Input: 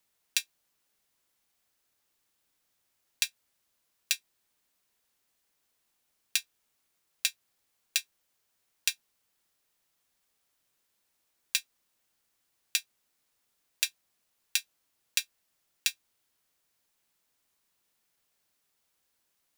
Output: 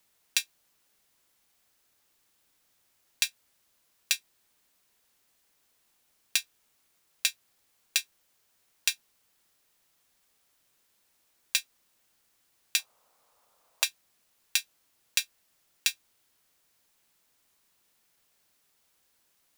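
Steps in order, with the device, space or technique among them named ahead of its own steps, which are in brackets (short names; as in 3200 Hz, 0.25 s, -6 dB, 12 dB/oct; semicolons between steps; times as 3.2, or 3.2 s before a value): clipper into limiter (hard clip -6.5 dBFS, distortion -19 dB; limiter -11 dBFS, peak gain reduction 4.5 dB); 12.79–13.84 band shelf 780 Hz +12.5 dB; gain +6 dB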